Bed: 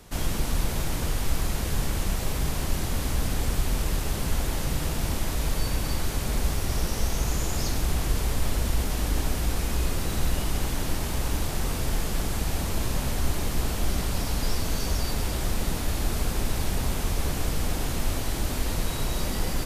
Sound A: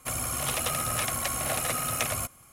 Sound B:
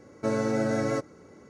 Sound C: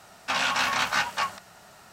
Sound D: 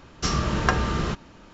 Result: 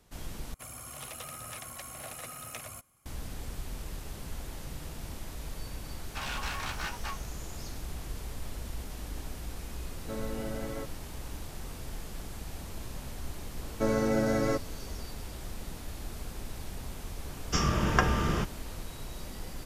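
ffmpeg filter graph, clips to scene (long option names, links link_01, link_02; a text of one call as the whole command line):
ffmpeg -i bed.wav -i cue0.wav -i cue1.wav -i cue2.wav -i cue3.wav -filter_complex "[2:a]asplit=2[link_01][link_02];[0:a]volume=-13.5dB[link_03];[3:a]aeval=exprs='clip(val(0),-1,0.0562)':channel_layout=same[link_04];[link_01]lowpass=3600[link_05];[4:a]asuperstop=centerf=4100:order=4:qfactor=4.9[link_06];[link_03]asplit=2[link_07][link_08];[link_07]atrim=end=0.544[link_09];[1:a]atrim=end=2.52,asetpts=PTS-STARTPTS,volume=-13.5dB[link_10];[link_08]atrim=start=3.056[link_11];[link_04]atrim=end=1.92,asetpts=PTS-STARTPTS,volume=-11dB,afade=type=in:duration=0.004:curve=hsin,afade=type=out:start_time=1.916:duration=0.004:curve=hsin,adelay=5870[link_12];[link_05]atrim=end=1.49,asetpts=PTS-STARTPTS,volume=-11.5dB,afade=type=in:duration=0.004:curve=hsin,afade=type=out:start_time=1.486:duration=0.004:curve=hsin,adelay=9850[link_13];[link_02]atrim=end=1.49,asetpts=PTS-STARTPTS,volume=-1dB,afade=type=in:duration=0.004:curve=hsin,afade=type=out:start_time=1.486:duration=0.004:curve=hsin,adelay=13570[link_14];[link_06]atrim=end=1.53,asetpts=PTS-STARTPTS,volume=-3dB,afade=type=in:duration=0.004:curve=hsin,afade=type=out:start_time=1.526:duration=0.004:curve=hsin,adelay=17300[link_15];[link_09][link_10]acrossfade=duration=0.004:curve1=hsin:curve2=hsin[link_16];[link_16][link_11]acrossfade=duration=0.004:curve1=hsin:curve2=hsin[link_17];[link_17][link_12][link_13][link_14][link_15]amix=inputs=5:normalize=0" out.wav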